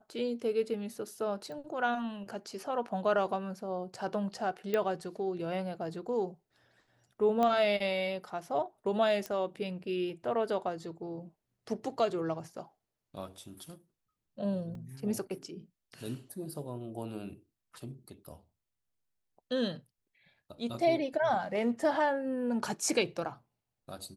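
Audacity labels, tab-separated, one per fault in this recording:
1.520000	1.520000	pop
4.740000	4.740000	pop -18 dBFS
7.430000	7.430000	pop -18 dBFS
9.260000	9.260000	pop -22 dBFS
14.750000	14.750000	gap 2.2 ms

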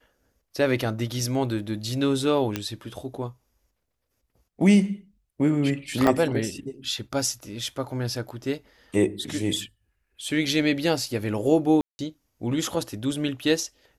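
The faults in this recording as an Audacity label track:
2.560000	2.560000	pop -11 dBFS
6.070000	6.070000	gap 2.3 ms
11.810000	11.990000	gap 0.18 s

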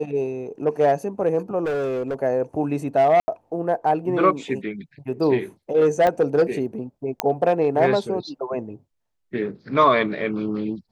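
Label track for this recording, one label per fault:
1.640000	2.150000	clipped -21.5 dBFS
3.200000	3.280000	gap 80 ms
6.070000	6.070000	pop -10 dBFS
7.200000	7.200000	pop -4 dBFS

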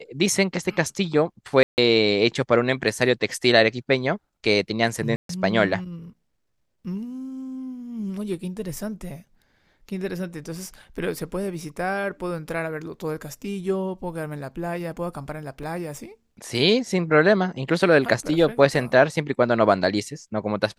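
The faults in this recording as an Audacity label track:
1.630000	1.780000	gap 0.149 s
5.160000	5.290000	gap 0.133 s
15.630000	15.630000	gap 4.6 ms

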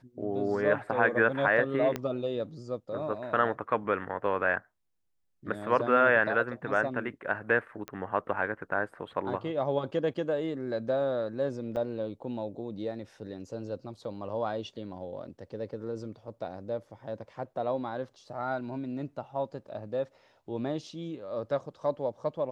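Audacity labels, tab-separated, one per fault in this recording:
1.960000	1.960000	pop -17 dBFS
7.880000	7.880000	pop -22 dBFS
11.760000	11.770000	gap 6.8 ms

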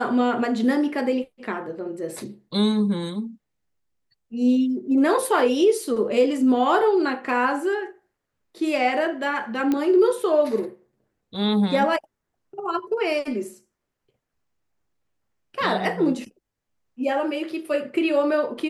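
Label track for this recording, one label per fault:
9.720000	9.720000	pop -12 dBFS

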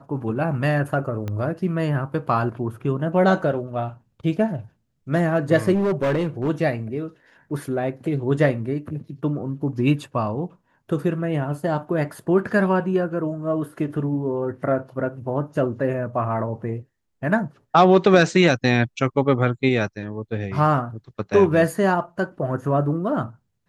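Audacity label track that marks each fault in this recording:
1.280000	1.280000	pop -17 dBFS
5.740000	6.500000	clipped -17.5 dBFS

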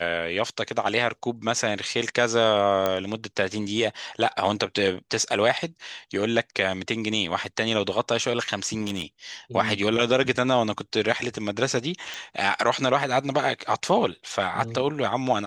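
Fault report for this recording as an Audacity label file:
2.860000	2.860000	pop -10 dBFS
8.810000	9.020000	clipped -22.5 dBFS
12.140000	12.140000	pop

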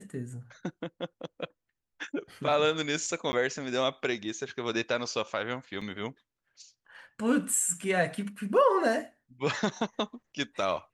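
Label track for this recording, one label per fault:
3.320000	3.330000	gap 10 ms
5.810000	5.820000	gap 5 ms

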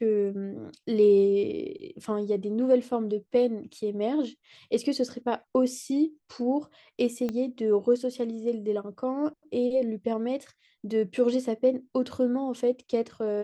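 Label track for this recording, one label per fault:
7.290000	7.290000	pop -19 dBFS

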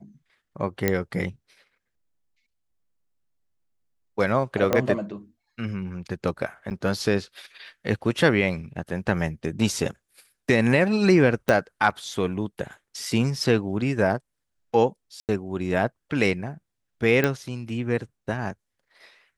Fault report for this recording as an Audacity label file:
0.880000	0.880000	pop -7 dBFS
4.730000	4.730000	pop -7 dBFS
6.700000	6.710000	gap 9.1 ms
11.490000	11.490000	pop -8 dBFS
15.200000	15.290000	gap 88 ms
17.240000	17.240000	pop -8 dBFS

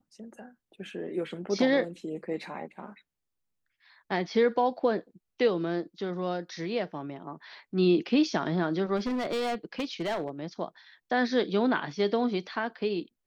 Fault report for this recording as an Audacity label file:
8.960000	10.290000	clipped -26.5 dBFS

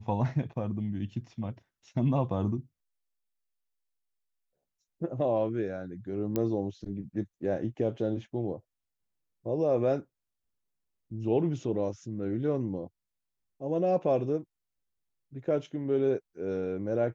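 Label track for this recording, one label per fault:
6.360000	6.360000	pop -16 dBFS

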